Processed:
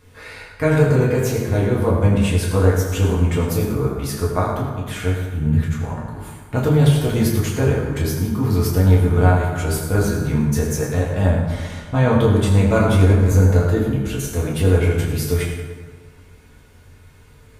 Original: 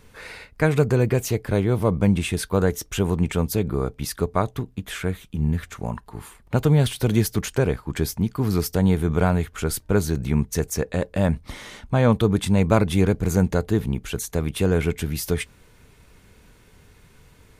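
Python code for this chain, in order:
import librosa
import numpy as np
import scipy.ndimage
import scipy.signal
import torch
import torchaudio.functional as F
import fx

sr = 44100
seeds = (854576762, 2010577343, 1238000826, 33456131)

y = fx.rev_fdn(x, sr, rt60_s=1.6, lf_ratio=1.0, hf_ratio=0.6, size_ms=65.0, drr_db=-5.5)
y = F.gain(torch.from_numpy(y), -3.5).numpy()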